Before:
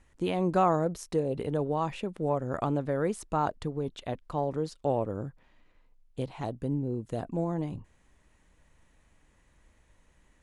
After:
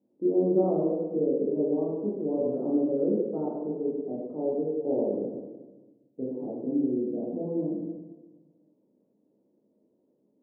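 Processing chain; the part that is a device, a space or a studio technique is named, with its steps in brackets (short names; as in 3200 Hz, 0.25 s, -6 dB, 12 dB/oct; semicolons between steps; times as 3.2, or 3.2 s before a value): next room (LPF 460 Hz 24 dB/oct; reverb RT60 1.3 s, pre-delay 8 ms, DRR -6 dB); HPF 240 Hz 24 dB/oct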